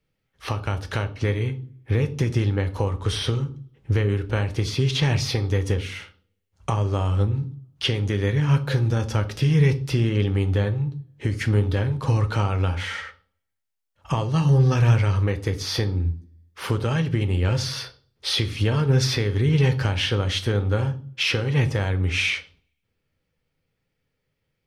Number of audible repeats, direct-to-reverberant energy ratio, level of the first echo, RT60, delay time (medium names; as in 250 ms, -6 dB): no echo, 8.5 dB, no echo, 0.45 s, no echo